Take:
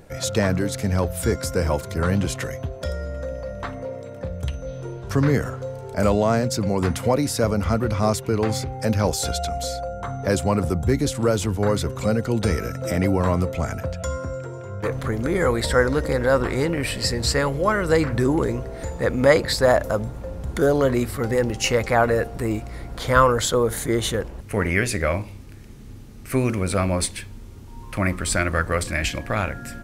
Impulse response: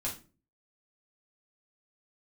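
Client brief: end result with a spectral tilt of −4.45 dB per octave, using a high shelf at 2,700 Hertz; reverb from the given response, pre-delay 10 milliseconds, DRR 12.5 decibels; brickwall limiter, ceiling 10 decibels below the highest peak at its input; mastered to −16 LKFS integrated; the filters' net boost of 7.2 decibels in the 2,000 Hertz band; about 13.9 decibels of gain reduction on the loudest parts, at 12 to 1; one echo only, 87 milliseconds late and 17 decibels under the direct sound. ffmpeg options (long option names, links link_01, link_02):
-filter_complex "[0:a]equalizer=frequency=2000:width_type=o:gain=7,highshelf=frequency=2700:gain=5,acompressor=threshold=-21dB:ratio=12,alimiter=limit=-18.5dB:level=0:latency=1,aecho=1:1:87:0.141,asplit=2[link_01][link_02];[1:a]atrim=start_sample=2205,adelay=10[link_03];[link_02][link_03]afir=irnorm=-1:irlink=0,volume=-15dB[link_04];[link_01][link_04]amix=inputs=2:normalize=0,volume=12.5dB"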